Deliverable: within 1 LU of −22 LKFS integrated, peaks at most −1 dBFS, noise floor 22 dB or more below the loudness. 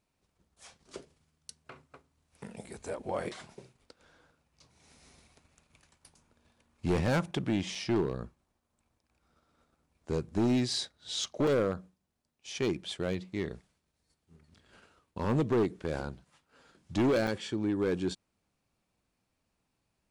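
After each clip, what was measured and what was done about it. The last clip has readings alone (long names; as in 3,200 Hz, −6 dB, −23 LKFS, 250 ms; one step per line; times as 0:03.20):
share of clipped samples 1.4%; peaks flattened at −23.0 dBFS; number of dropouts 3; longest dropout 3.6 ms; integrated loudness −32.0 LKFS; sample peak −23.0 dBFS; target loudness −22.0 LKFS
→ clipped peaks rebuilt −23 dBFS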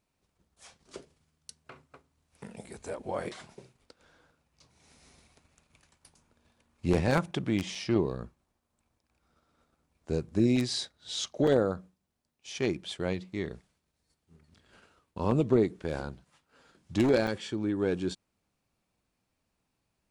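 share of clipped samples 0.0%; number of dropouts 3; longest dropout 3.6 ms
→ repair the gap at 0:07.75/0:11.47/0:17.27, 3.6 ms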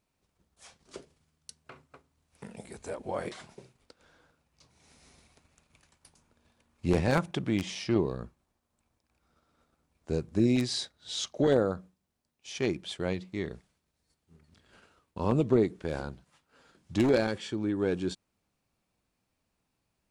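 number of dropouts 0; integrated loudness −30.0 LKFS; sample peak −14.0 dBFS; target loudness −22.0 LKFS
→ level +8 dB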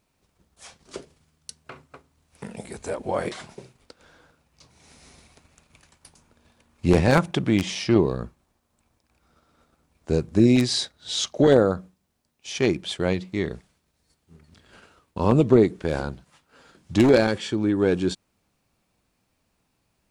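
integrated loudness −22.5 LKFS; sample peak −6.0 dBFS; background noise floor −73 dBFS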